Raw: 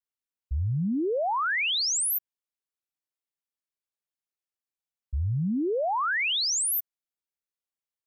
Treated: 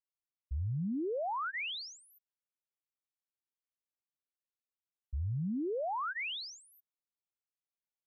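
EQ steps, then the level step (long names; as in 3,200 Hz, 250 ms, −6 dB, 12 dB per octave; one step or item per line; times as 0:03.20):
Butterworth band-reject 1,700 Hz, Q 6.4
high-frequency loss of the air 250 metres
−7.5 dB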